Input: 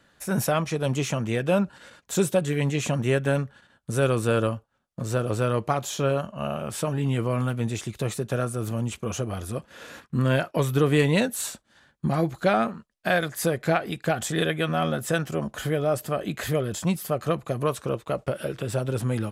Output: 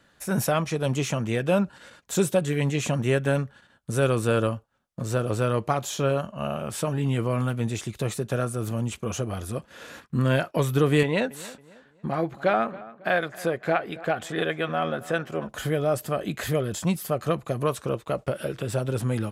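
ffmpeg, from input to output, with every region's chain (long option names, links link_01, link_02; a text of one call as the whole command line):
ffmpeg -i in.wav -filter_complex "[0:a]asettb=1/sr,asplit=3[link_01][link_02][link_03];[link_01]atrim=end=11.034[link_04];[link_02]atrim=start=11.03:end=15.49,asetpts=PTS-STARTPTS,afade=type=in:duration=0.004:curve=qsin,afade=type=out:start_time=4.456:duration=0.004:curve=qsin,bass=frequency=250:gain=-8,treble=frequency=4000:gain=-12,asplit=2[link_05][link_06];[link_06]adelay=274,lowpass=frequency=2900:poles=1,volume=-18.5dB,asplit=2[link_07][link_08];[link_08]adelay=274,lowpass=frequency=2900:poles=1,volume=0.38,asplit=2[link_09][link_10];[link_10]adelay=274,lowpass=frequency=2900:poles=1,volume=0.38[link_11];[link_05][link_07][link_09][link_11]amix=inputs=4:normalize=0,atrim=end_sample=196686[link_12];[link_03]atrim=start=15.486[link_13];[link_04][link_12]acrossfade=duration=0.004:curve1=hsin:curve2=qsin[link_14];[link_14][link_13]acrossfade=duration=0.004:curve1=qsin:curve2=hsin" out.wav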